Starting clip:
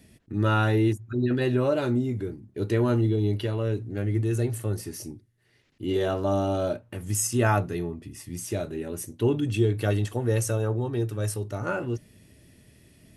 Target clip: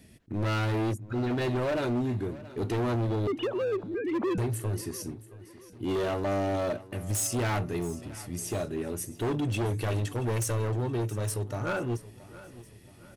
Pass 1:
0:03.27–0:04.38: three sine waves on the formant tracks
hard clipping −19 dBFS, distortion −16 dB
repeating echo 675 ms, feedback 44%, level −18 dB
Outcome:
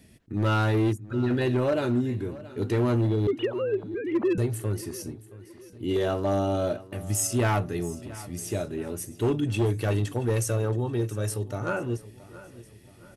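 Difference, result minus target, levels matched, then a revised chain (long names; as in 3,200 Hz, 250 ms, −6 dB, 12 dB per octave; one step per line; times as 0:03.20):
hard clipping: distortion −9 dB
0:03.27–0:04.38: three sine waves on the formant tracks
hard clipping −26 dBFS, distortion −8 dB
repeating echo 675 ms, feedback 44%, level −18 dB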